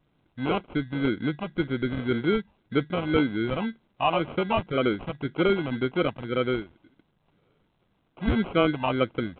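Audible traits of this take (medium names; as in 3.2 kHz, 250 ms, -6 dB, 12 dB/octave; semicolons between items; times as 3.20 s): phasing stages 8, 1.9 Hz, lowest notch 380–2200 Hz; aliases and images of a low sample rate 1.8 kHz, jitter 0%; A-law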